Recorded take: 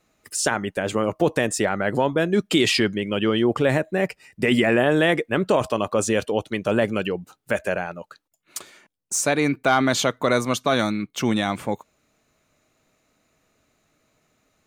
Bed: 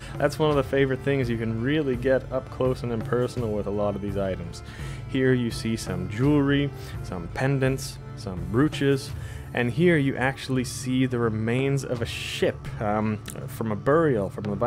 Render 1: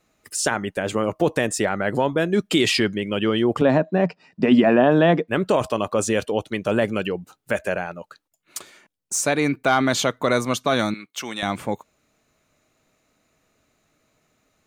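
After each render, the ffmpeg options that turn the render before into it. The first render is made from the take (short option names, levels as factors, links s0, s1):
-filter_complex "[0:a]asettb=1/sr,asplit=3[s0][s1][s2];[s0]atrim=end=3.614[s3];[s1]atrim=start=3.61:end=5.28,asetpts=PTS-STARTPTS,afade=t=in:d=0.004:c=qsin,afade=t=out:st=1.666:d=0.004:c=qsin,highpass=150,equalizer=f=170:t=q:w=4:g=10,equalizer=f=260:t=q:w=4:g=7,equalizer=f=680:t=q:w=4:g=6,equalizer=f=1000:t=q:w=4:g=6,equalizer=f=2100:t=q:w=4:g=-9,equalizer=f=3200:t=q:w=4:g=-4,lowpass=f=5000:w=0.5412,lowpass=f=5000:w=1.3066[s4];[s2]atrim=start=5.276[s5];[s3][s4]acrossfade=d=0.004:c1=hsin:c2=qsin[s6];[s6][s5]acrossfade=d=0.004:c1=qsin:c2=hsin,asettb=1/sr,asplit=3[s7][s8][s9];[s7]atrim=end=10.944[s10];[s8]atrim=start=10.94:end=11.43,asetpts=PTS-STARTPTS,afade=t=in:d=0.004:c=qsin,afade=t=out:st=0.486:d=0.004:c=qsin,highpass=f=1200:p=1[s11];[s9]atrim=start=11.426[s12];[s10][s11]acrossfade=d=0.004:c1=hsin:c2=qsin[s13];[s13][s12]acrossfade=d=0.004:c1=qsin:c2=hsin"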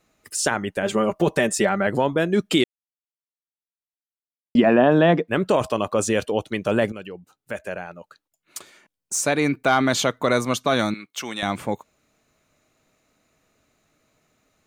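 -filter_complex "[0:a]asettb=1/sr,asplit=3[s0][s1][s2];[s0]atrim=end=0.824[s3];[s1]atrim=start=0.82:end=1.87,asetpts=PTS-STARTPTS,afade=t=in:d=0.004:c=qsin,afade=t=out:st=1.046:d=0.004:c=qsin,aecho=1:1:5.1:0.65,atrim=end_sample=46305[s4];[s2]atrim=start=1.866[s5];[s3][s4]acrossfade=d=0.004:c1=hsin:c2=qsin[s6];[s6][s5]acrossfade=d=0.004:c1=qsin:c2=hsin,asplit=4[s7][s8][s9][s10];[s7]atrim=end=2.64,asetpts=PTS-STARTPTS,afade=t=out:st=2.636:d=0.004:c=hsin[s11];[s8]atrim=start=2.64:end=4.55,asetpts=PTS-STARTPTS,volume=0[s12];[s9]atrim=start=4.55:end=6.92,asetpts=PTS-STARTPTS,afade=t=in:d=0.004:c=hsin,afade=t=out:st=2.366:d=0.004:c=hsin:silence=0.237137[s13];[s10]atrim=start=6.92,asetpts=PTS-STARTPTS,afade=t=in:d=2.5:silence=0.237137[s14];[s11][s12][s13][s14]concat=n=4:v=0:a=1"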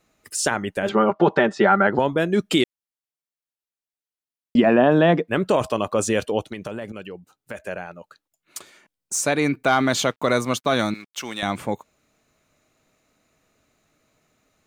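-filter_complex "[0:a]asettb=1/sr,asplit=3[s0][s1][s2];[s0]atrim=end=0.894[s3];[s1]atrim=start=0.89:end=1.99,asetpts=PTS-STARTPTS,afade=t=in:d=0.004:c=qsin,afade=t=out:st=1.096:d=0.004:c=qsin,highpass=130,equalizer=f=200:t=q:w=4:g=3,equalizer=f=380:t=q:w=4:g=5,equalizer=f=860:t=q:w=4:g=10,equalizer=f=1400:t=q:w=4:g=10,equalizer=f=2600:t=q:w=4:g=-4,lowpass=f=4200:w=0.5412,lowpass=f=4200:w=1.3066[s4];[s2]atrim=start=1.986[s5];[s3][s4]acrossfade=d=0.004:c1=hsin:c2=qsin[s6];[s6][s5]acrossfade=d=0.004:c1=qsin:c2=hsin,asettb=1/sr,asplit=3[s7][s8][s9];[s7]atrim=end=6.464[s10];[s8]atrim=start=6.46:end=7.58,asetpts=PTS-STARTPTS,afade=t=in:d=0.004:c=qsin,afade=t=out:st=1.116:d=0.004:c=qsin,acompressor=threshold=0.0447:ratio=8:attack=3.2:release=140:knee=1:detection=peak[s11];[s9]atrim=start=7.576[s12];[s10][s11]acrossfade=d=0.004:c1=hsin:c2=qsin[s13];[s13][s12]acrossfade=d=0.004:c1=qsin:c2=hsin,asettb=1/sr,asplit=3[s14][s15][s16];[s14]atrim=end=9.754[s17];[s15]atrim=start=9.75:end=11.41,asetpts=PTS-STARTPTS,afade=t=in:d=0.004:c=qsin,afade=t=out:st=1.656:d=0.004:c=qsin,aeval=exprs='sgn(val(0))*max(abs(val(0))-0.00316,0)':c=same[s18];[s16]atrim=start=11.406[s19];[s17][s18]acrossfade=d=0.004:c1=hsin:c2=qsin[s20];[s20][s19]acrossfade=d=0.004:c1=qsin:c2=hsin"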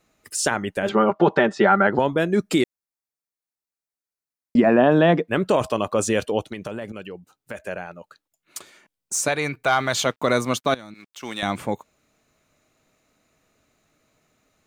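-filter_complex "[0:a]asettb=1/sr,asplit=3[s0][s1][s2];[s0]atrim=end=2.324[s3];[s1]atrim=start=2.32:end=4.79,asetpts=PTS-STARTPTS,afade=t=in:d=0.004:c=qsin,afade=t=out:st=2.466:d=0.004:c=qsin,equalizer=f=3100:t=o:w=0.42:g=-10[s4];[s2]atrim=start=4.786[s5];[s3][s4]acrossfade=d=0.004:c1=hsin:c2=qsin[s6];[s6][s5]acrossfade=d=0.004:c1=qsin:c2=hsin,asettb=1/sr,asplit=3[s7][s8][s9];[s7]atrim=end=9.284[s10];[s8]atrim=start=9.28:end=10.06,asetpts=PTS-STARTPTS,afade=t=in:d=0.004:c=qsin,afade=t=out:st=0.776:d=0.004:c=qsin,equalizer=f=260:w=1.4:g=-11.5[s11];[s9]atrim=start=10.056[s12];[s10][s11]acrossfade=d=0.004:c1=hsin:c2=qsin[s13];[s13][s12]acrossfade=d=0.004:c1=qsin:c2=hsin,asettb=1/sr,asplit=3[s14][s15][s16];[s14]atrim=end=10.744[s17];[s15]atrim=start=10.74:end=11.23,asetpts=PTS-STARTPTS,afade=t=in:d=0.004:c=qsin,afade=t=out:st=0.486:d=0.004:c=qsin,acompressor=threshold=0.0126:ratio=5:attack=3.2:release=140:knee=1:detection=peak[s18];[s16]atrim=start=11.226[s19];[s17][s18]acrossfade=d=0.004:c1=hsin:c2=qsin[s20];[s20][s19]acrossfade=d=0.004:c1=qsin:c2=hsin"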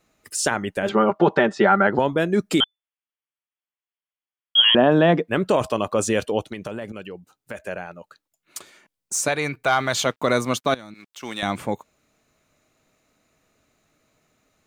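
-filter_complex "[0:a]asettb=1/sr,asplit=3[s0][s1][s2];[s0]atrim=end=2.604[s3];[s1]atrim=start=2.6:end=4.75,asetpts=PTS-STARTPTS,afade=t=in:d=0.004:c=qsin,afade=t=out:st=2.146:d=0.004:c=qsin,lowpass=f=3000:t=q:w=0.5098,lowpass=f=3000:t=q:w=0.6013,lowpass=f=3000:t=q:w=0.9,lowpass=f=3000:t=q:w=2.563,afreqshift=-3500[s4];[s2]atrim=start=4.746[s5];[s3][s4]acrossfade=d=0.004:c1=hsin:c2=qsin[s6];[s6][s5]acrossfade=d=0.004:c1=qsin:c2=hsin"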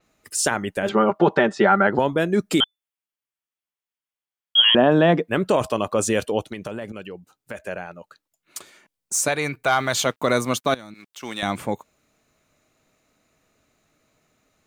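-af "adynamicequalizer=threshold=0.0158:dfrequency=7700:dqfactor=0.7:tfrequency=7700:tqfactor=0.7:attack=5:release=100:ratio=0.375:range=2.5:mode=boostabove:tftype=highshelf"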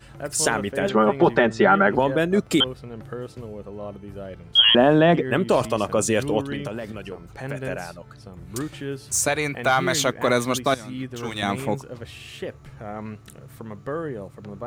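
-filter_complex "[1:a]volume=0.355[s0];[0:a][s0]amix=inputs=2:normalize=0"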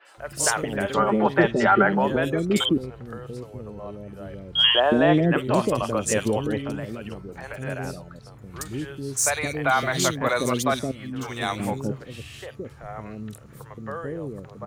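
-filter_complex "[0:a]acrossover=split=490|3000[s0][s1][s2];[s2]adelay=50[s3];[s0]adelay=170[s4];[s4][s1][s3]amix=inputs=3:normalize=0"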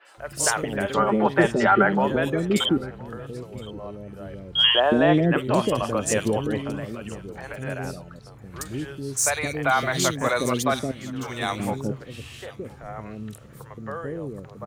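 -af "aecho=1:1:1016:0.0794"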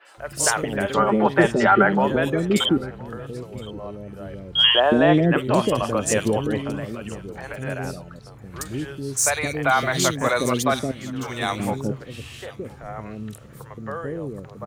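-af "volume=1.26"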